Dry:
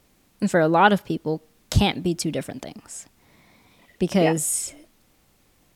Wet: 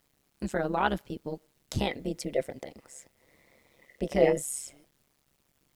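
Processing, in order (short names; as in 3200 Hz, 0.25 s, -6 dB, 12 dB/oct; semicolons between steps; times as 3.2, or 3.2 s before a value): 1.78–4.42 small resonant body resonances 510/2000 Hz, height 16 dB, ringing for 45 ms; AM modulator 140 Hz, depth 70%; requantised 10-bit, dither none; gain -7.5 dB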